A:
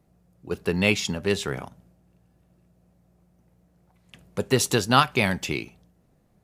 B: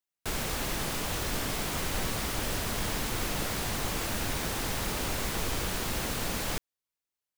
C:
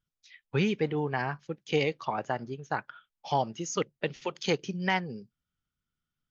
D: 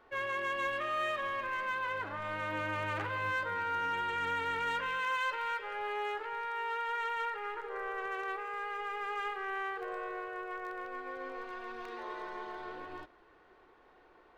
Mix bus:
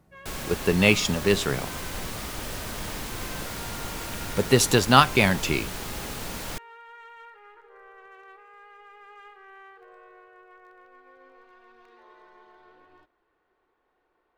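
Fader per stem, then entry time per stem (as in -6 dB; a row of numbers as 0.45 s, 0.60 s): +2.5 dB, -2.5 dB, mute, -11.5 dB; 0.00 s, 0.00 s, mute, 0.00 s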